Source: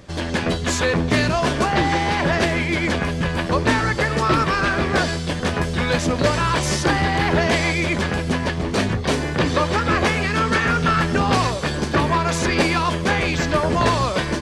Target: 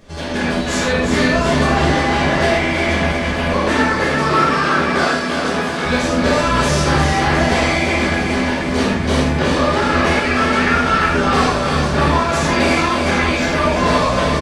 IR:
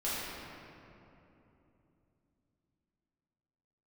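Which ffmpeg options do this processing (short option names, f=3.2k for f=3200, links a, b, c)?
-filter_complex "[0:a]asettb=1/sr,asplit=3[a][b][c];[a]atrim=end=3.514[d];[b]atrim=start=3.51:end=5.85,asetpts=PTS-STARTPTS,afade=t=in:d=0.004:c=qsin,afade=t=out:st=2.336:d=0.004:c=qsin,highpass=170[e];[c]atrim=start=5.846[f];[d][e]acrossfade=d=0.004:c1=hsin:c2=qsin[g];[g][f]acrossfade=d=0.004:c1=qsin:c2=hsin,aecho=1:1:355|710|1065|1420|1775|2130|2485:0.501|0.286|0.163|0.0928|0.0529|0.0302|0.0172[h];[1:a]atrim=start_sample=2205,atrim=end_sample=6174[i];[h][i]afir=irnorm=-1:irlink=0,volume=-1.5dB"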